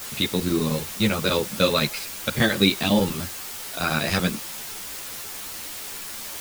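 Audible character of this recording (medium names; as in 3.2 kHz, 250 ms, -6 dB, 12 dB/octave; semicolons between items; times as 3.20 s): chopped level 10 Hz, duty 85%; a quantiser's noise floor 6-bit, dither triangular; a shimmering, thickened sound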